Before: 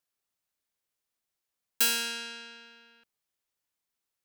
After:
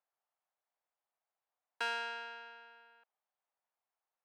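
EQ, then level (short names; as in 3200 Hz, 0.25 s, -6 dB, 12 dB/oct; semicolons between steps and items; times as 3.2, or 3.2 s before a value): ladder band-pass 870 Hz, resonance 45%; +12.0 dB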